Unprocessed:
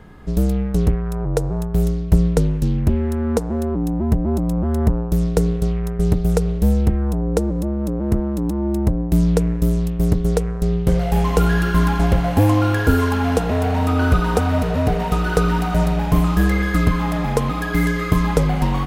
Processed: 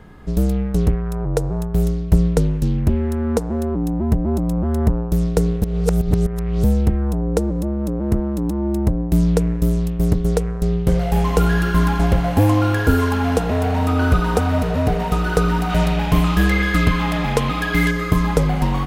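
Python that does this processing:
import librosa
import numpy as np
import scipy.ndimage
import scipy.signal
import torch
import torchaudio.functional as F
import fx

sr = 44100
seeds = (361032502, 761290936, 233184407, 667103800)

y = fx.peak_eq(x, sr, hz=2900.0, db=8.0, octaves=1.5, at=(15.69, 17.91))
y = fx.edit(y, sr, fx.reverse_span(start_s=5.62, length_s=1.02), tone=tone)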